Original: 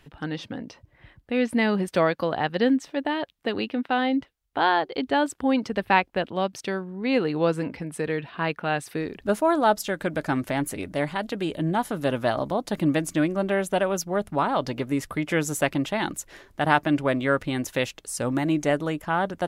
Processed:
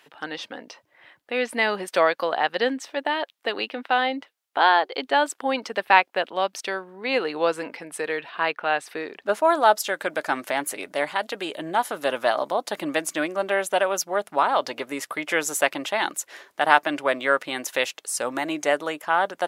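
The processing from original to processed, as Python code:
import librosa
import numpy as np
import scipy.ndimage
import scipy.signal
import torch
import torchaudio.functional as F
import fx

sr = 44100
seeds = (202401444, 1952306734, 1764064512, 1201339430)

y = fx.high_shelf(x, sr, hz=6600.0, db=-10.5, at=(8.5, 9.43))
y = scipy.signal.sosfilt(scipy.signal.butter(2, 560.0, 'highpass', fs=sr, output='sos'), y)
y = F.gain(torch.from_numpy(y), 4.5).numpy()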